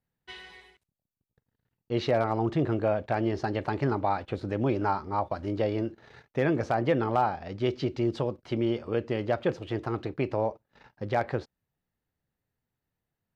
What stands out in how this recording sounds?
noise floor -87 dBFS; spectral tilt -6.0 dB/octave

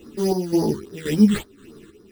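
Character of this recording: aliases and images of a low sample rate 5.4 kHz, jitter 0%; phasing stages 8, 3.6 Hz, lowest notch 690–2700 Hz; chopped level 1.9 Hz, depth 60%, duty 60%; a shimmering, thickened sound

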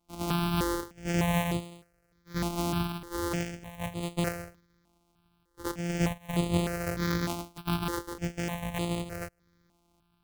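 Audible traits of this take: a buzz of ramps at a fixed pitch in blocks of 256 samples; random-step tremolo; notches that jump at a steady rate 3.3 Hz 470–5600 Hz

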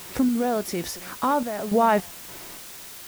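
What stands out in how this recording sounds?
random-step tremolo 3.5 Hz, depth 80%; a quantiser's noise floor 8-bit, dither triangular

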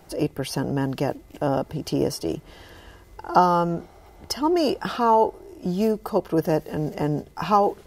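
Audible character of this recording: noise floor -50 dBFS; spectral tilt -5.5 dB/octave

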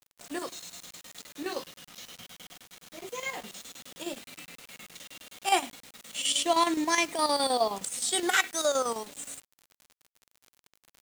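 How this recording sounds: chopped level 9.6 Hz, depth 60%, duty 70%; a quantiser's noise floor 8-bit, dither none

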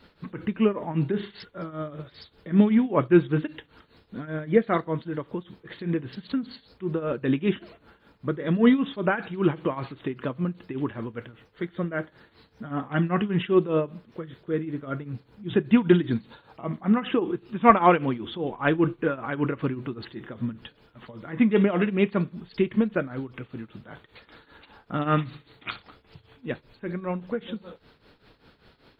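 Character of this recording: tremolo triangle 5.1 Hz, depth 85%

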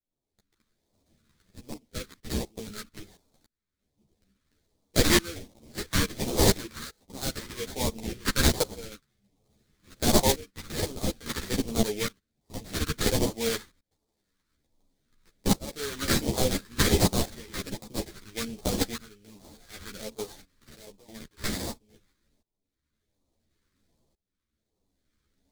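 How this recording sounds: aliases and images of a low sample rate 2.8 kHz, jitter 20%; phasing stages 2, 1.3 Hz, lowest notch 700–1500 Hz; tremolo saw up 0.58 Hz, depth 95%; a shimmering, thickened sound

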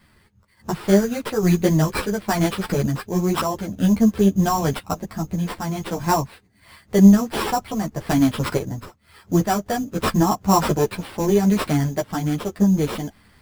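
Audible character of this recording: aliases and images of a low sample rate 6.5 kHz, jitter 0%; random-step tremolo; a shimmering, thickened sound

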